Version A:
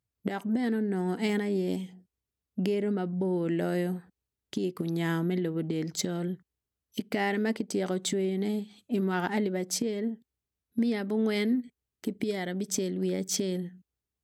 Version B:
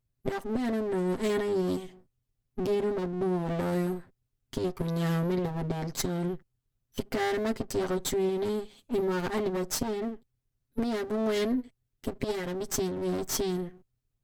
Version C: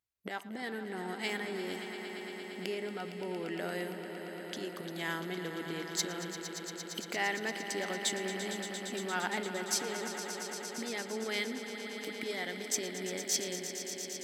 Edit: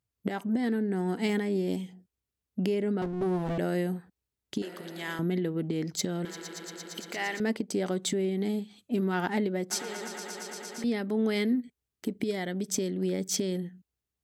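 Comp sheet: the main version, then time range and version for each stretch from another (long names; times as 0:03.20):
A
0:03.02–0:03.58: punch in from B
0:04.62–0:05.19: punch in from C
0:06.25–0:07.40: punch in from C
0:09.71–0:10.84: punch in from C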